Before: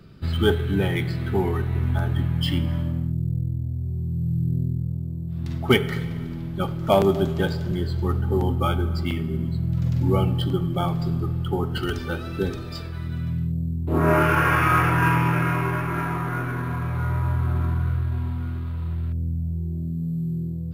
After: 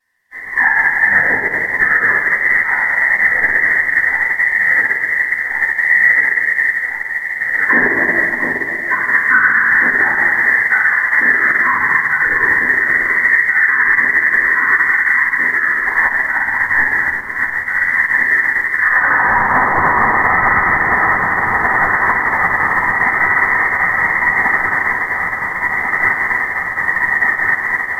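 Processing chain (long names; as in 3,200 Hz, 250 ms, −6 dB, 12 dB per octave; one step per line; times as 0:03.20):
high-pass filter 100 Hz 24 dB per octave
voice inversion scrambler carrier 2,700 Hz
bit reduction 9 bits
random phases in short frames
flanger 1.5 Hz, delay 8.7 ms, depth 5.4 ms, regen +3%
on a send: delay that swaps between a low-pass and a high-pass 516 ms, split 1,600 Hz, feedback 90%, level −7.5 dB
on the sum: rectangular room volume 1,500 cubic metres, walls mixed, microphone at 3.1 metres
wrong playback speed 45 rpm record played at 33 rpm
boost into a limiter +13.5 dB
expander for the loud parts 2.5 to 1, over −28 dBFS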